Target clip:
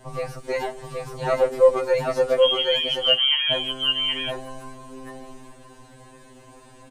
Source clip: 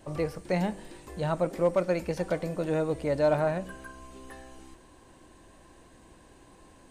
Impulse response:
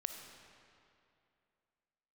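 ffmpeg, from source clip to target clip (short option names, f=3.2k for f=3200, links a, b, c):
-filter_complex "[0:a]asettb=1/sr,asplit=3[a][b][c];[a]atrim=end=2.404[d];[b]atrim=start=2.4:end=3.52,asetpts=PTS-STARTPTS,afade=t=in:d=0.004:c=qsin,afade=t=out:st=1.116:d=0.004:c=qsin,lowpass=f=2.9k:t=q:w=0.5098,lowpass=f=2.9k:t=q:w=0.6013,lowpass=f=2.9k:t=q:w=0.9,lowpass=f=2.9k:t=q:w=2.563,afreqshift=-3400[e];[c]atrim=start=3.516[f];[d][e]acrossfade=d=0.004:c1=hsin:c2=qsin[g];[g][f]acrossfade=d=0.004:c1=qsin:c2=hsin,aecho=1:1:774:0.708,afftfilt=real='re*2.45*eq(mod(b,6),0)':imag='im*2.45*eq(mod(b,6),0)':win_size=2048:overlap=0.75,volume=7.5dB"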